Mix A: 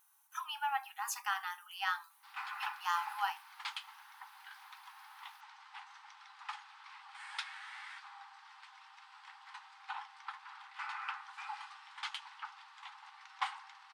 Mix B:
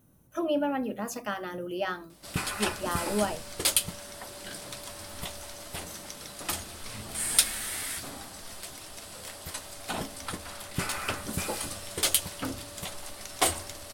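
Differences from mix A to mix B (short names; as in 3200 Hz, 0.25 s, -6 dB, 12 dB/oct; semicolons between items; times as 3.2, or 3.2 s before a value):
background: remove tape spacing loss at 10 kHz 41 dB; master: remove brick-wall FIR high-pass 770 Hz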